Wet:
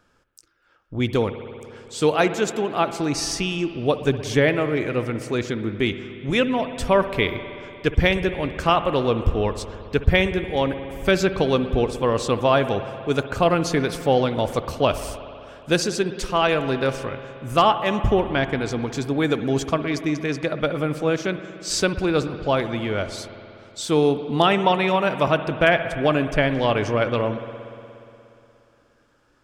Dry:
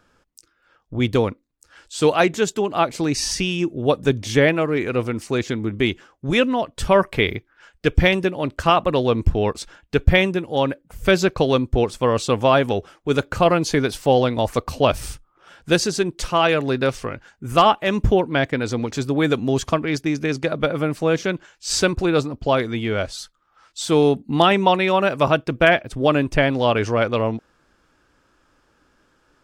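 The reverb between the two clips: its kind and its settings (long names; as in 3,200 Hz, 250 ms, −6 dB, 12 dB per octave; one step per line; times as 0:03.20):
spring reverb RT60 2.9 s, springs 59 ms, chirp 65 ms, DRR 10 dB
level −2.5 dB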